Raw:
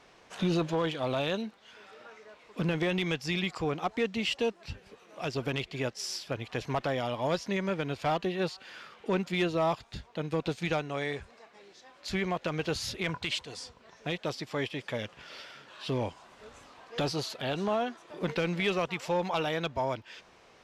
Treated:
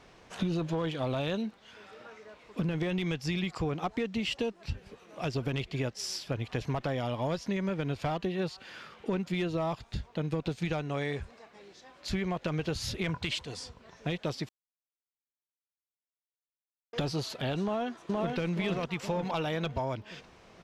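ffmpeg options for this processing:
-filter_complex "[0:a]asplit=2[s0][s1];[s1]afade=t=in:st=17.62:d=0.01,afade=t=out:st=18.37:d=0.01,aecho=0:1:470|940|1410|1880|2350|2820:1|0.4|0.16|0.064|0.0256|0.01024[s2];[s0][s2]amix=inputs=2:normalize=0,asplit=3[s3][s4][s5];[s3]atrim=end=14.49,asetpts=PTS-STARTPTS,afade=t=out:st=14.486:d=0.004:c=hsin[s6];[s4]atrim=start=14.49:end=16.93,asetpts=PTS-STARTPTS,volume=0[s7];[s5]atrim=start=16.93,asetpts=PTS-STARTPTS,afade=t=in:d=0.004:c=hsin[s8];[s6][s7][s8]concat=n=3:v=0:a=1,lowshelf=f=230:g=9.5,acompressor=threshold=0.0398:ratio=6"

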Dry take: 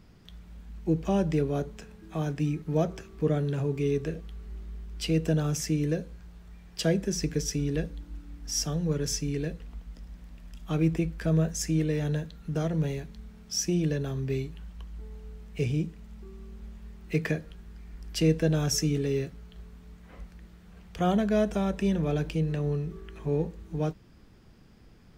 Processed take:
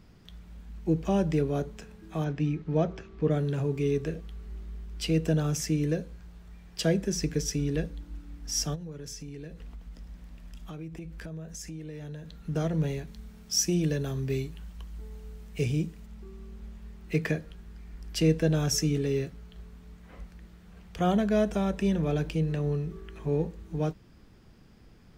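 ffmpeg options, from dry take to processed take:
-filter_complex "[0:a]asettb=1/sr,asplit=3[s0][s1][s2];[s0]atrim=end=2.244[s3];[s1]atrim=start=2.24:end=3.31,asetpts=PTS-STARTPTS,afade=t=in:d=0.004:c=qsin,afade=t=out:st=1.066:d=0.004:c=qsin,lowpass=4200[s4];[s2]atrim=start=3.306[s5];[s3][s4]acrossfade=d=0.004:c1=hsin:c2=qsin[s6];[s6][s5]acrossfade=d=0.004:c1=qsin:c2=hsin,asplit=3[s7][s8][s9];[s7]afade=t=out:st=8.74:d=0.02[s10];[s8]acompressor=threshold=0.0126:ratio=5:attack=3.2:release=140:knee=1:detection=peak,afade=t=in:st=8.74:d=0.02,afade=t=out:st=12.44:d=0.02[s11];[s9]afade=t=in:st=12.44:d=0.02[s12];[s10][s11][s12]amix=inputs=3:normalize=0,asettb=1/sr,asplit=3[s13][s14][s15];[s13]atrim=end=13.074[s16];[s14]atrim=start=13.07:end=16.06,asetpts=PTS-STARTPTS,afade=t=in:d=0.004:c=qsin,afade=t=out:st=2.986:d=0.004:c=qsin,highshelf=f=5800:g=7.5[s17];[s15]atrim=start=16.056[s18];[s16][s17]acrossfade=d=0.004:c1=hsin:c2=qsin[s19];[s19][s18]acrossfade=d=0.004:c1=qsin:c2=hsin"

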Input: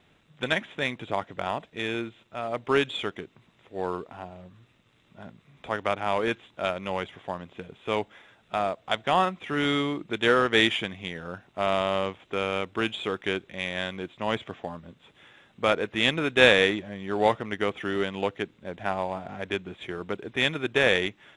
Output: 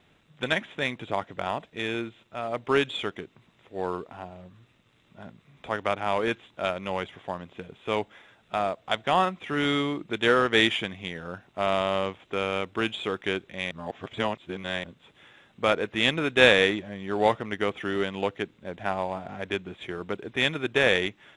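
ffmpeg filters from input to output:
-filter_complex "[0:a]asplit=3[s0][s1][s2];[s0]atrim=end=13.712[s3];[s1]atrim=start=13.708:end=14.842,asetpts=PTS-STARTPTS,areverse[s4];[s2]atrim=start=14.838[s5];[s3][s4]acrossfade=d=0.004:c1=hsin:c2=hsin[s6];[s6][s5]acrossfade=d=0.004:c1=hsin:c2=hsin"

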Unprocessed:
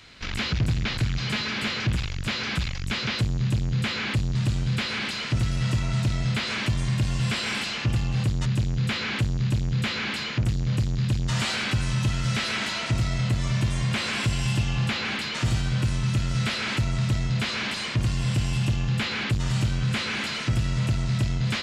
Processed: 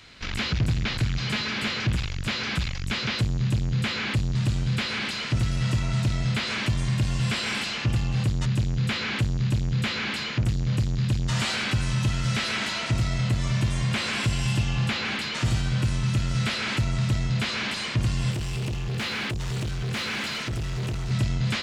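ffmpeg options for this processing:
-filter_complex "[0:a]asettb=1/sr,asplit=3[s0][s1][s2];[s0]atrim=end=18.314[s3];[s1]atrim=start=18.31:end=21.11,asetpts=PTS-STARTPTS,afade=t=in:d=0.004:c=qsin,afade=t=out:st=2.796:d=0.004:c=qsin,asoftclip=type=hard:threshold=0.0473[s4];[s2]atrim=start=21.106[s5];[s3][s4]acrossfade=d=0.004:c1=hsin:c2=qsin[s6];[s6][s5]acrossfade=d=0.004:c1=qsin:c2=hsin"

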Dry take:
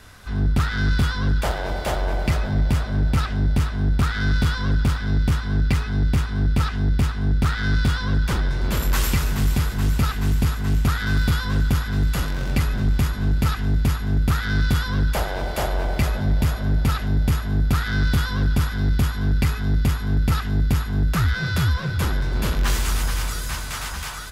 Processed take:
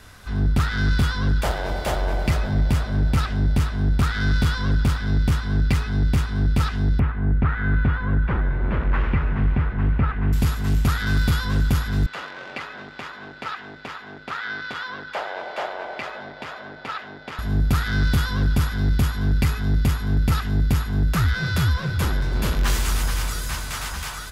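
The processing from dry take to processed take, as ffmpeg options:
-filter_complex "[0:a]asettb=1/sr,asplit=3[s0][s1][s2];[s0]atrim=end=6.994[s3];[s1]atrim=start=6.99:end=10.33,asetpts=PTS-STARTPTS,afade=t=in:d=0.004:c=qsin,afade=t=out:st=3.336:d=0.004:c=qsin,lowpass=f=2200:w=0.5412,lowpass=f=2200:w=1.3066[s4];[s2]atrim=start=10.326[s5];[s3][s4]acrossfade=d=0.004:c1=hsin:c2=qsin[s6];[s6][s5]acrossfade=d=0.004:c1=qsin:c2=hsin,asettb=1/sr,asplit=3[s7][s8][s9];[s7]atrim=end=12.064[s10];[s8]atrim=start=12.06:end=17.39,asetpts=PTS-STARTPTS,afade=t=in:d=0.004:c=qsin,afade=t=out:st=5.326:d=0.004:c=qsin,highpass=560,lowpass=3100[s11];[s9]atrim=start=17.386[s12];[s10][s11]acrossfade=d=0.004:c1=hsin:c2=qsin[s13];[s13][s12]acrossfade=d=0.004:c1=qsin:c2=hsin"

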